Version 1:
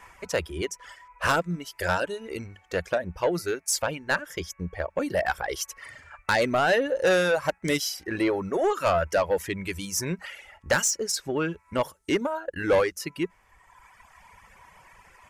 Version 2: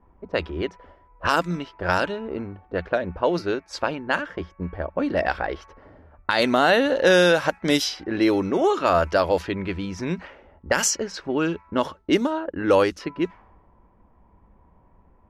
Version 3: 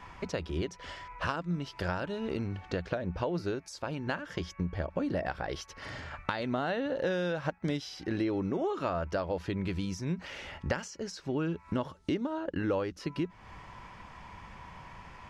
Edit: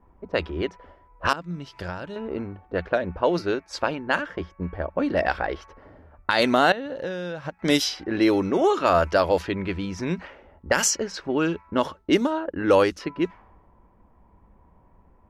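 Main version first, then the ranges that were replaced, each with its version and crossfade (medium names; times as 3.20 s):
2
1.33–2.16 s: from 3
6.72–7.59 s: from 3
not used: 1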